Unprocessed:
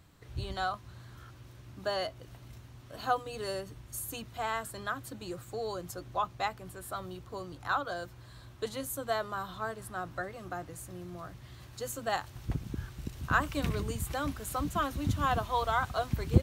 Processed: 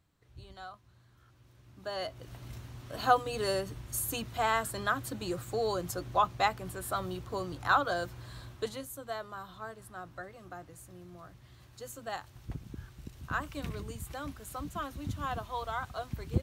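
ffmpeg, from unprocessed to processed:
-af "volume=5dB,afade=t=in:st=1.18:d=0.73:silence=0.421697,afade=t=in:st=1.91:d=0.6:silence=0.298538,afade=t=out:st=8.38:d=0.49:silence=0.266073"

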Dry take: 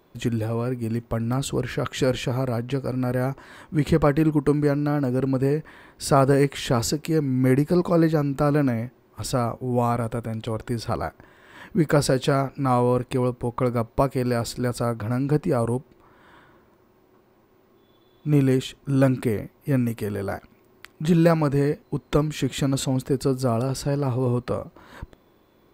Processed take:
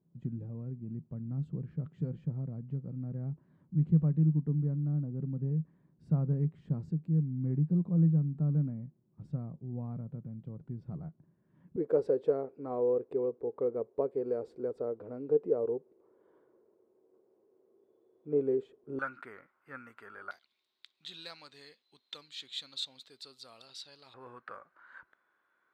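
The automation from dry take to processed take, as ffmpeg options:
-af "asetnsamples=n=441:p=0,asendcmd='11.76 bandpass f 440;18.99 bandpass f 1400;20.31 bandpass f 3800;24.14 bandpass f 1500',bandpass=f=160:t=q:w=6.4:csg=0"

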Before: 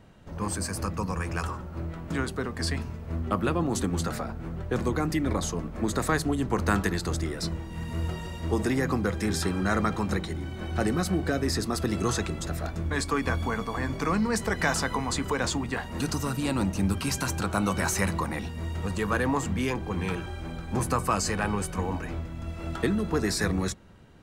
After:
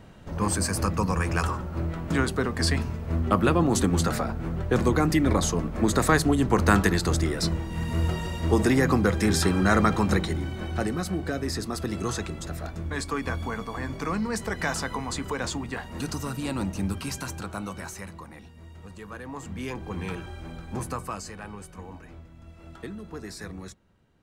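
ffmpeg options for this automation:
-af "volume=15.5dB,afade=t=out:st=10.32:d=0.58:silence=0.421697,afade=t=out:st=16.81:d=1.23:silence=0.281838,afade=t=in:st=19.26:d=0.64:silence=0.298538,afade=t=out:st=20.61:d=0.7:silence=0.354813"

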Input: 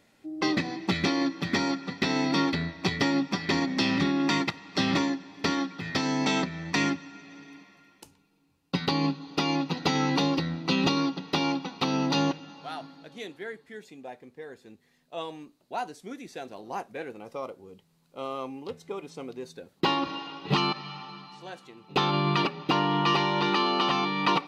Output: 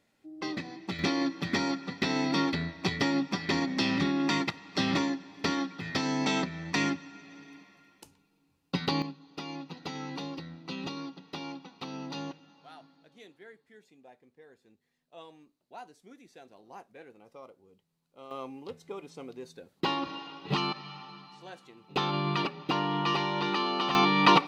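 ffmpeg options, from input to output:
-af "asetnsamples=n=441:p=0,asendcmd='0.99 volume volume -2.5dB;9.02 volume volume -13dB;18.31 volume volume -4.5dB;23.95 volume volume 4.5dB',volume=-9dB"

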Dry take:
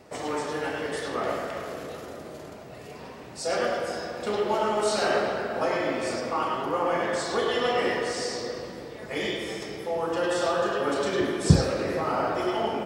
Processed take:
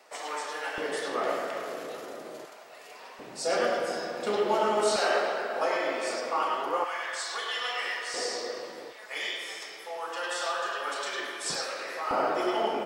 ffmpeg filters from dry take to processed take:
-af "asetnsamples=n=441:p=0,asendcmd='0.78 highpass f 310;2.45 highpass f 770;3.19 highpass f 210;4.96 highpass f 470;6.84 highpass f 1300;8.14 highpass f 440;8.92 highpass f 980;12.11 highpass f 300',highpass=780"

